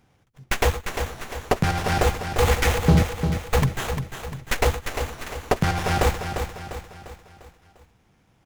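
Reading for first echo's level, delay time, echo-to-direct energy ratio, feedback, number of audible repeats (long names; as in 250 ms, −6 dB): −7.5 dB, 349 ms, −6.5 dB, 47%, 5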